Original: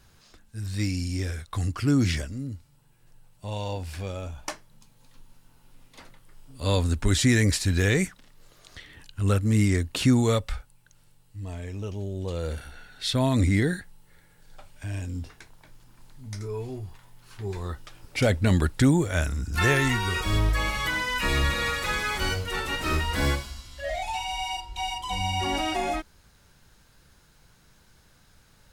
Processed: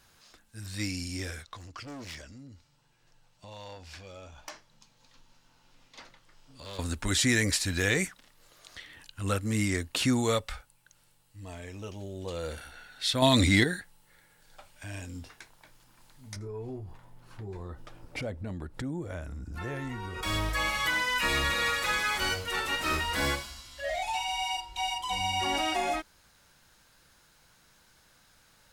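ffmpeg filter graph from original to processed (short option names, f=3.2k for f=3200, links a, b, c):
-filter_complex "[0:a]asettb=1/sr,asplit=3[a][b][c];[a]atrim=end=1.434[d];[b]atrim=start=1.43:end=6.79,asetpts=PTS-STARTPTS,afade=t=in:d=0.004:c=qsin,afade=t=out:st=5.356:d=0.004:c=qsin,highshelf=f=7.9k:t=q:w=1.5:g=-10,volume=25.5dB,asoftclip=hard,volume=-25.5dB,acompressor=threshold=-37dB:ratio=6:attack=3.2:release=140:knee=1:detection=peak[e];[c]atrim=start=6.786[f];[d][e]acrossfade=d=0.004:c1=hsin:c2=qsin[g];[g][f]acrossfade=d=0.004:c1=qsin:c2=hsin,asettb=1/sr,asplit=3[h][i][j];[h]atrim=end=13.224[k];[i]atrim=start=13.22:end=13.64,asetpts=PTS-STARTPTS,afade=t=in:d=0.004:c=qsin,afade=t=out:st=0.416:d=0.004:c=qsin,equalizer=f=3.7k:w=2.3:g=10,acontrast=50[l];[j]atrim=start=13.636[m];[k][l]acrossfade=d=0.004:c1=hsin:c2=qsin[n];[n][m]acrossfade=d=0.004:c1=qsin:c2=hsin,asettb=1/sr,asplit=3[o][p][q];[o]atrim=end=16.364[r];[p]atrim=start=16.36:end=20.23,asetpts=PTS-STARTPTS,afade=t=in:d=0.004:c=qsin,afade=t=out:st=3.866:d=0.004:c=qsin,tiltshelf=f=1.1k:g=9.5,acompressor=threshold=-29dB:ratio=4:attack=3.2:release=140:knee=1:detection=peak[s];[q]atrim=start=20.226[t];[r][s]acrossfade=d=0.004:c1=hsin:c2=qsin[u];[u][t]acrossfade=d=0.004:c1=qsin:c2=hsin,lowshelf=f=260:g=-11,bandreject=f=410:w=12"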